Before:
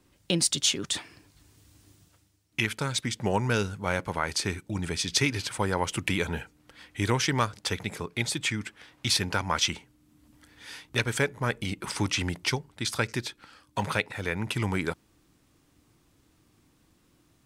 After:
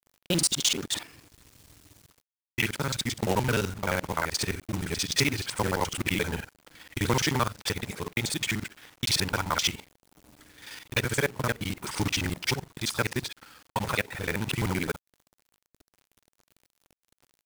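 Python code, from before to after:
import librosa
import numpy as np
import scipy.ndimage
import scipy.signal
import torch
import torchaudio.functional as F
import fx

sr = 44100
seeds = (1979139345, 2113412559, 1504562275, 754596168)

y = fx.local_reverse(x, sr, ms=43.0)
y = fx.quant_companded(y, sr, bits=4)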